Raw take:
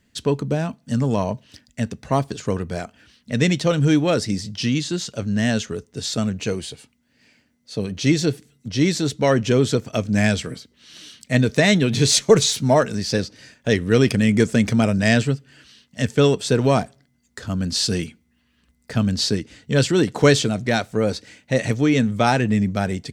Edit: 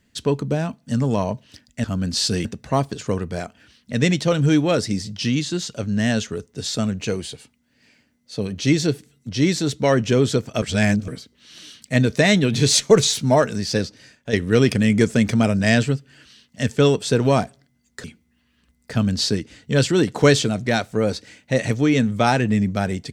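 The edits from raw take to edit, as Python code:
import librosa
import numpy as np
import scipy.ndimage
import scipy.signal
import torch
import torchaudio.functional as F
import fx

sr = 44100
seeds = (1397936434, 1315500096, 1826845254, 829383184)

y = fx.edit(x, sr, fx.reverse_span(start_s=10.01, length_s=0.46),
    fx.fade_out_to(start_s=13.22, length_s=0.5, floor_db=-8.0),
    fx.move(start_s=17.43, length_s=0.61, to_s=1.84), tone=tone)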